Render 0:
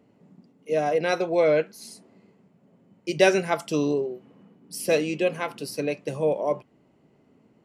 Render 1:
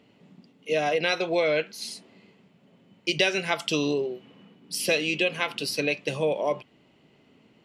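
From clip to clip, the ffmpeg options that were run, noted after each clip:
-af "equalizer=f=3.2k:t=o:w=1.5:g=14.5,acompressor=threshold=-21dB:ratio=4"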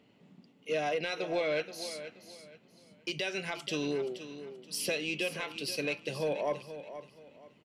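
-af "alimiter=limit=-15.5dB:level=0:latency=1:release=330,asoftclip=type=tanh:threshold=-16.5dB,aecho=1:1:477|954|1431:0.251|0.0703|0.0197,volume=-5dB"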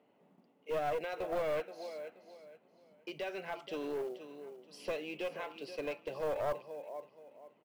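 -af "bandpass=f=720:t=q:w=1.1:csg=0,aeval=exprs='clip(val(0),-1,0.0168)':c=same,acrusher=bits=7:mode=log:mix=0:aa=0.000001,volume=1dB"

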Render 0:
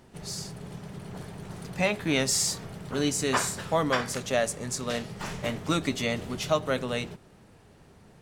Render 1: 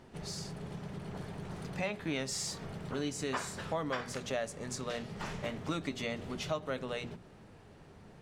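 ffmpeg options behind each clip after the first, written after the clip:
-af "highshelf=f=7.6k:g=-11.5,bandreject=f=60:t=h:w=6,bandreject=f=120:t=h:w=6,bandreject=f=180:t=h:w=6,bandreject=f=240:t=h:w=6,acompressor=threshold=-39dB:ratio=2"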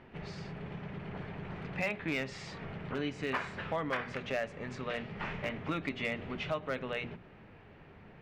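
-af "lowpass=f=2.4k:t=q:w=2,asoftclip=type=hard:threshold=-24.5dB"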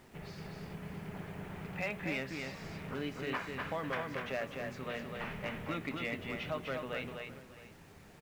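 -af "acrusher=bits=9:mix=0:aa=0.000001,aecho=1:1:250|603|672:0.596|0.119|0.119,volume=-3.5dB"

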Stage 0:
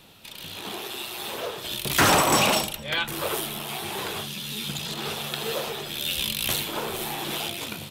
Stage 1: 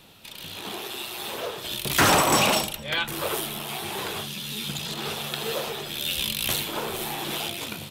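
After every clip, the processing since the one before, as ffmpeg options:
-af anull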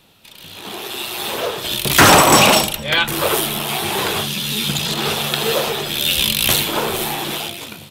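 -af "dynaudnorm=f=200:g=9:m=13.5dB,volume=-1dB"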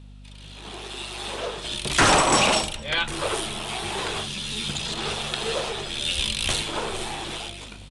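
-af "asubboost=boost=5.5:cutoff=61,aeval=exprs='val(0)+0.0178*(sin(2*PI*50*n/s)+sin(2*PI*2*50*n/s)/2+sin(2*PI*3*50*n/s)/3+sin(2*PI*4*50*n/s)/4+sin(2*PI*5*50*n/s)/5)':c=same,aresample=22050,aresample=44100,volume=-8dB"

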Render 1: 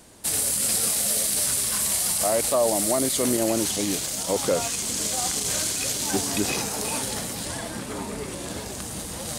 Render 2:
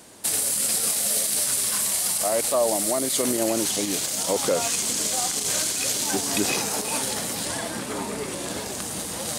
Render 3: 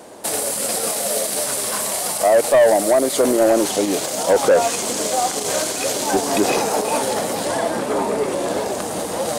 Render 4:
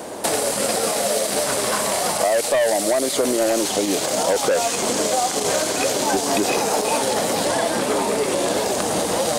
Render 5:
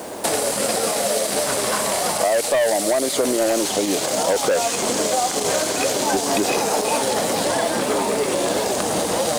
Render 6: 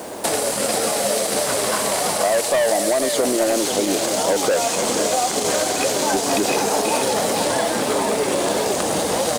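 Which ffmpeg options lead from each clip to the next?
-af "highpass=f=200:p=1,alimiter=limit=-15.5dB:level=0:latency=1:release=180,volume=3.5dB"
-af "equalizer=f=590:t=o:w=2.4:g=14.5,asoftclip=type=tanh:threshold=-8dB"
-filter_complex "[0:a]acrossover=split=2300|7500[a][b][c];[a]acompressor=threshold=-28dB:ratio=4[d];[b]acompressor=threshold=-35dB:ratio=4[e];[c]acompressor=threshold=-41dB:ratio=4[f];[d][e][f]amix=inputs=3:normalize=0,volume=8dB"
-af "acrusher=bits=6:mix=0:aa=0.000001"
-af "aecho=1:1:485:0.398"

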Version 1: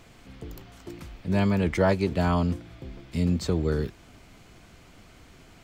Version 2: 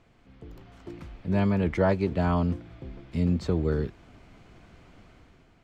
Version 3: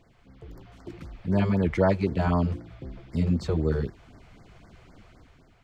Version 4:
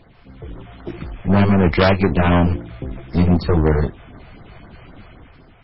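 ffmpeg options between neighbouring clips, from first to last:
-af "aemphasis=mode=reproduction:type=75kf,dynaudnorm=f=130:g=9:m=8dB,volume=-8dB"
-af "afftfilt=real='re*(1-between(b*sr/1024,220*pow(3200/220,0.5+0.5*sin(2*PI*3.9*pts/sr))/1.41,220*pow(3200/220,0.5+0.5*sin(2*PI*3.9*pts/sr))*1.41))':imag='im*(1-between(b*sr/1024,220*pow(3200/220,0.5+0.5*sin(2*PI*3.9*pts/sr))/1.41,220*pow(3200/220,0.5+0.5*sin(2*PI*3.9*pts/sr))*1.41))':win_size=1024:overlap=0.75,volume=1.5dB"
-filter_complex "[0:a]aeval=exprs='0.299*(cos(1*acos(clip(val(0)/0.299,-1,1)))-cos(1*PI/2))+0.0299*(cos(5*acos(clip(val(0)/0.299,-1,1)))-cos(5*PI/2))+0.133*(cos(6*acos(clip(val(0)/0.299,-1,1)))-cos(6*PI/2))+0.133*(cos(8*acos(clip(val(0)/0.299,-1,1)))-cos(8*PI/2))':c=same,asplit=2[a][b];[b]asoftclip=type=hard:threshold=-21dB,volume=-6dB[c];[a][c]amix=inputs=2:normalize=0,volume=4dB" -ar 16000 -c:a libmp3lame -b:a 16k

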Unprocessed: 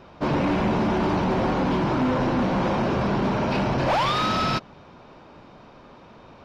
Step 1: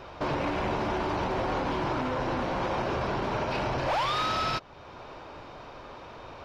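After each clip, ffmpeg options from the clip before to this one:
-af "equalizer=f=200:w=1.4:g=-11.5,alimiter=level_in=2.5dB:limit=-24dB:level=0:latency=1:release=421,volume=-2.5dB,volume=5dB"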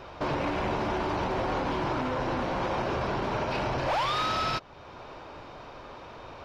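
-af anull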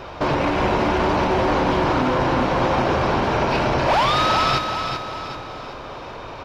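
-af "aecho=1:1:384|768|1152|1536|1920:0.473|0.213|0.0958|0.0431|0.0194,volume=9dB"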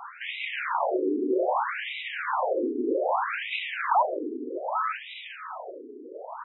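-af "asoftclip=type=hard:threshold=-16.5dB,afftfilt=real='re*between(b*sr/1024,310*pow(2800/310,0.5+0.5*sin(2*PI*0.63*pts/sr))/1.41,310*pow(2800/310,0.5+0.5*sin(2*PI*0.63*pts/sr))*1.41)':imag='im*between(b*sr/1024,310*pow(2800/310,0.5+0.5*sin(2*PI*0.63*pts/sr))/1.41,310*pow(2800/310,0.5+0.5*sin(2*PI*0.63*pts/sr))*1.41)':win_size=1024:overlap=0.75"

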